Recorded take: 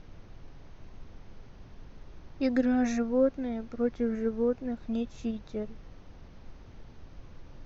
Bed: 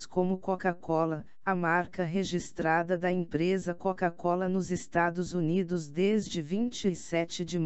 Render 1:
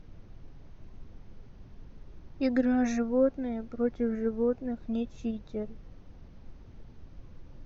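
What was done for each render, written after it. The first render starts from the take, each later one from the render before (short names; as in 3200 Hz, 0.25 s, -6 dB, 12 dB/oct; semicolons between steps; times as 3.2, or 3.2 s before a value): denoiser 6 dB, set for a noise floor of -51 dBFS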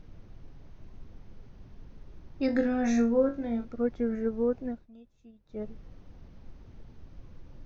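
2.46–3.65 flutter echo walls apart 3.7 m, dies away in 0.26 s; 4.68–5.64 dip -21 dB, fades 0.18 s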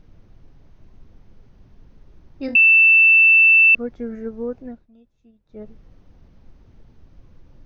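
2.55–3.75 bleep 2660 Hz -8.5 dBFS; 4.62–5.66 air absorption 59 m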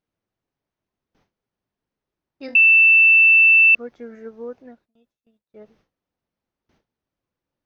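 HPF 690 Hz 6 dB/oct; gate with hold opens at -53 dBFS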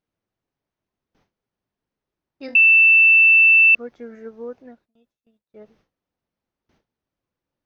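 nothing audible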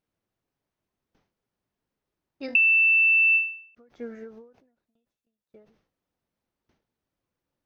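compressor 3:1, threshold -20 dBFS, peak gain reduction 7 dB; ending taper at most 110 dB/s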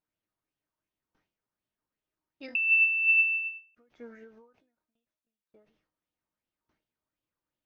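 resonator 310 Hz, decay 0.26 s, harmonics all, mix 70%; LFO bell 2.7 Hz 990–3200 Hz +9 dB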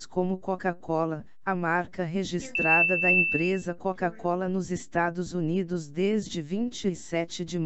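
add bed +1 dB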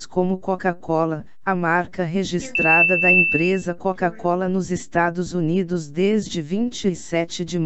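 gain +7 dB; limiter -3 dBFS, peak gain reduction 2 dB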